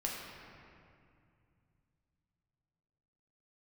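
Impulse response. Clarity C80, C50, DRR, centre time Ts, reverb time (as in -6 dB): 1.5 dB, 0.5 dB, -3.0 dB, 0.114 s, 2.4 s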